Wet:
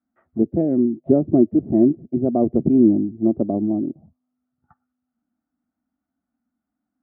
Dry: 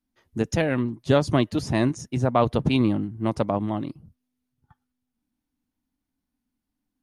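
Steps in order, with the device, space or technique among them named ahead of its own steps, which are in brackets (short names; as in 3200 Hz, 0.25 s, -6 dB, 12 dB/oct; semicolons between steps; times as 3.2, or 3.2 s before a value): envelope filter bass rig (envelope low-pass 370–1400 Hz down, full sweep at -25.5 dBFS; speaker cabinet 84–2300 Hz, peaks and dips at 120 Hz -8 dB, 230 Hz +5 dB, 450 Hz -6 dB, 680 Hz +9 dB, 1000 Hz -9 dB, 1600 Hz -7 dB)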